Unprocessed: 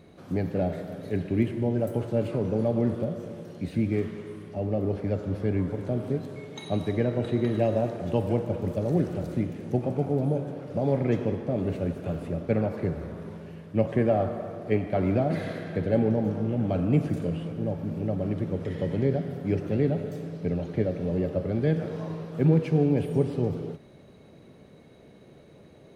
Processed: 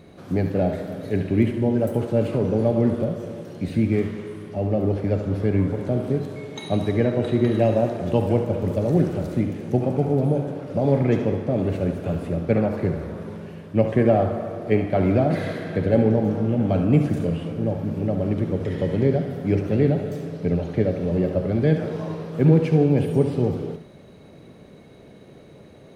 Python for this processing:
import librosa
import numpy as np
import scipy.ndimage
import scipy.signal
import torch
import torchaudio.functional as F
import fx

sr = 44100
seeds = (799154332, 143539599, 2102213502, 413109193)

y = x + 10.0 ** (-9.5 / 20.0) * np.pad(x, (int(71 * sr / 1000.0), 0))[:len(x)]
y = y * 10.0 ** (5.0 / 20.0)